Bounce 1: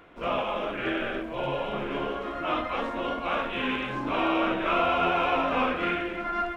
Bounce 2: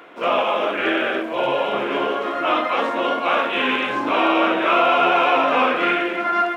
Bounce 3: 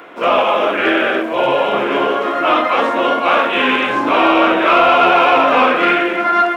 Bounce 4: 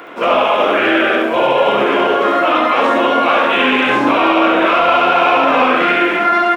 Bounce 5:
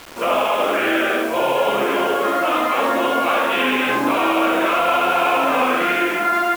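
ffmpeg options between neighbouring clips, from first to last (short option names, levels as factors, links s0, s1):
-filter_complex "[0:a]highpass=310,asplit=2[s0][s1];[s1]alimiter=limit=0.0841:level=0:latency=1,volume=0.75[s2];[s0][s2]amix=inputs=2:normalize=0,volume=1.88"
-filter_complex "[0:a]acrossover=split=2200[s0][s1];[s0]acontrast=58[s2];[s2][s1]amix=inputs=2:normalize=0,highshelf=f=3300:g=7"
-af "alimiter=limit=0.355:level=0:latency=1,aecho=1:1:70:0.631,volume=1.41"
-af "acrusher=bits=4:mix=0:aa=0.000001,volume=0.531"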